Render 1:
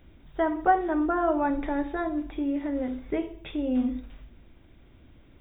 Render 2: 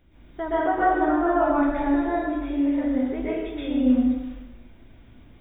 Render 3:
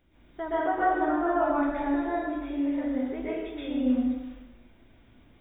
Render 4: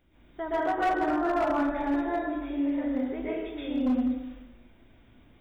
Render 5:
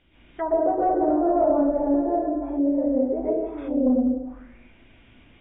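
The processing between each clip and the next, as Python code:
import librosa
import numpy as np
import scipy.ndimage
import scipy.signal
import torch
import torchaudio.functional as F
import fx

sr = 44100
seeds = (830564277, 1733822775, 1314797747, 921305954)

y1 = fx.rev_plate(x, sr, seeds[0], rt60_s=1.1, hf_ratio=0.85, predelay_ms=110, drr_db=-9.5)
y1 = y1 * 10.0 ** (-5.5 / 20.0)
y2 = fx.low_shelf(y1, sr, hz=190.0, db=-6.0)
y2 = y2 * 10.0 ** (-3.5 / 20.0)
y3 = np.clip(y2, -10.0 ** (-21.0 / 20.0), 10.0 ** (-21.0 / 20.0))
y4 = fx.envelope_lowpass(y3, sr, base_hz=550.0, top_hz=3100.0, q=2.9, full_db=-27.5, direction='down')
y4 = y4 * 10.0 ** (3.0 / 20.0)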